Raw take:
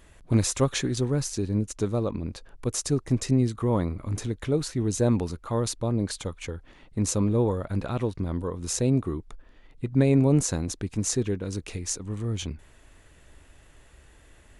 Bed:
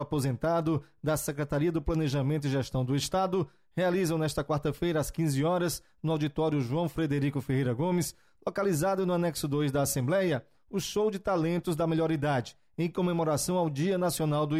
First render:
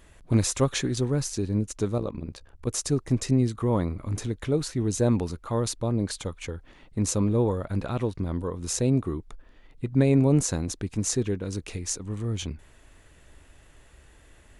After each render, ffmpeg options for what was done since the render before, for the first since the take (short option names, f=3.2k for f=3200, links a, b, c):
-filter_complex "[0:a]asettb=1/sr,asplit=3[a][b][c];[a]atrim=end=1.984[d];[b]atrim=start=1.98:end=2.67,asetpts=PTS-STARTPTS,afade=t=in:d=0.004:c=qsin,afade=t=out:st=0.686:d=0.004:c=qsin,tremolo=f=65:d=0.788[e];[c]atrim=start=2.666[f];[d][e]acrossfade=d=0.004:c1=hsin:c2=qsin[g];[g][f]acrossfade=d=0.004:c1=qsin:c2=hsin"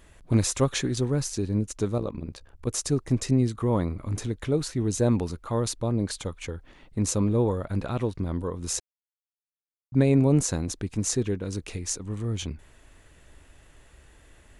-filter_complex "[0:a]asplit=3[a][b][c];[a]atrim=end=8.8,asetpts=PTS-STARTPTS,afade=t=out:st=8.796:d=0.004:c=hsin[d];[b]atrim=start=8.8:end=9.92,asetpts=PTS-STARTPTS,volume=0[e];[c]atrim=start=9.92,asetpts=PTS-STARTPTS,afade=t=in:d=0.004:c=hsin[f];[d][e][f]concat=n=3:v=0:a=1"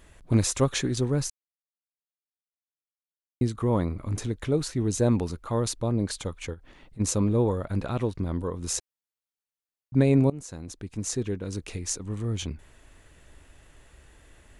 -filter_complex "[0:a]asplit=3[a][b][c];[a]afade=t=out:st=6.53:d=0.02[d];[b]acompressor=threshold=-44dB:ratio=4:attack=3.2:release=140:knee=1:detection=peak,afade=t=in:st=6.53:d=0.02,afade=t=out:st=6.99:d=0.02[e];[c]afade=t=in:st=6.99:d=0.02[f];[d][e][f]amix=inputs=3:normalize=0,asplit=4[g][h][i][j];[g]atrim=end=1.3,asetpts=PTS-STARTPTS,afade=t=out:st=1.296:d=0.004:c=hsin[k];[h]atrim=start=1.3:end=3.41,asetpts=PTS-STARTPTS,volume=0[l];[i]atrim=start=3.41:end=10.3,asetpts=PTS-STARTPTS,afade=t=in:d=0.004:c=hsin,afade=t=out:st=6.886:d=0.004:c=hsin:silence=0.0794328[m];[j]atrim=start=10.3,asetpts=PTS-STARTPTS,afade=t=in:d=1.91:c=qsin:silence=0.0794328[n];[k][l][m][n]concat=n=4:v=0:a=1"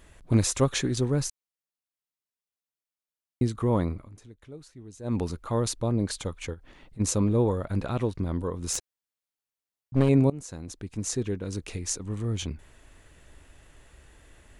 -filter_complex "[0:a]asettb=1/sr,asplit=3[a][b][c];[a]atrim=end=8.734[d];[b]atrim=start=8.73:end=10.09,asetpts=PTS-STARTPTS,afade=t=in:d=0.004:c=qsin,afade=t=out:st=1.356:d=0.004:c=qsin,aeval=exprs='clip(val(0),-1,0.0473)':c=same[e];[c]atrim=start=10.086[f];[d][e]acrossfade=d=0.004:c1=hsin:c2=qsin[g];[g][f]acrossfade=d=0.004:c1=qsin:c2=hsin,asplit=3[h][i][j];[h]atrim=end=4.09,asetpts=PTS-STARTPTS,afade=t=out:st=3.91:d=0.18:silence=0.112202[k];[i]atrim=start=4.09:end=5.03,asetpts=PTS-STARTPTS,volume=-19dB[l];[j]atrim=start=5.03,asetpts=PTS-STARTPTS,afade=t=in:d=0.18:silence=0.112202[m];[k][l][m]concat=n=3:v=0:a=1"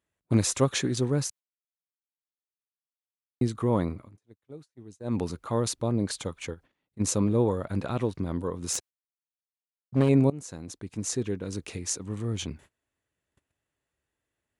-af "agate=range=-27dB:threshold=-45dB:ratio=16:detection=peak,highpass=100"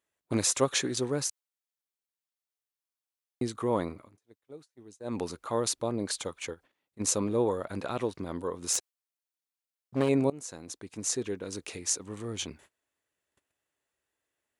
-af "bass=f=250:g=-11,treble=f=4k:g=2"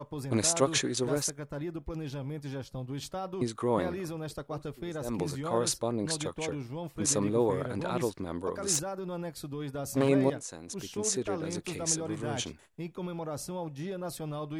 -filter_complex "[1:a]volume=-9dB[a];[0:a][a]amix=inputs=2:normalize=0"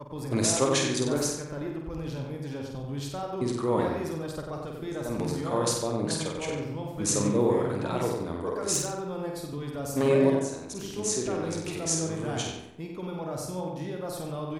-filter_complex "[0:a]asplit=2[a][b];[b]adelay=49,volume=-5dB[c];[a][c]amix=inputs=2:normalize=0,asplit=2[d][e];[e]adelay=93,lowpass=f=3.4k:p=1,volume=-3.5dB,asplit=2[f][g];[g]adelay=93,lowpass=f=3.4k:p=1,volume=0.45,asplit=2[h][i];[i]adelay=93,lowpass=f=3.4k:p=1,volume=0.45,asplit=2[j][k];[k]adelay=93,lowpass=f=3.4k:p=1,volume=0.45,asplit=2[l][m];[m]adelay=93,lowpass=f=3.4k:p=1,volume=0.45,asplit=2[n][o];[o]adelay=93,lowpass=f=3.4k:p=1,volume=0.45[p];[d][f][h][j][l][n][p]amix=inputs=7:normalize=0"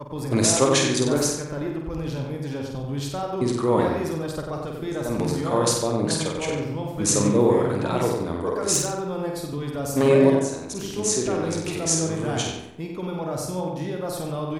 -af "volume=5.5dB"